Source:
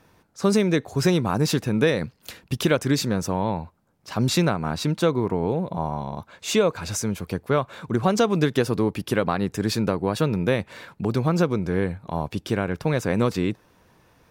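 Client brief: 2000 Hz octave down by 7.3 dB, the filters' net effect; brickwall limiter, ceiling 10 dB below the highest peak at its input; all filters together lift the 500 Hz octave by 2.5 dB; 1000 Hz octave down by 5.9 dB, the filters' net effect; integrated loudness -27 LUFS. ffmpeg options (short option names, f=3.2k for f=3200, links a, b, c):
-af "equalizer=f=500:t=o:g=5,equalizer=f=1k:t=o:g=-8.5,equalizer=f=2k:t=o:g=-7,alimiter=limit=-16dB:level=0:latency=1"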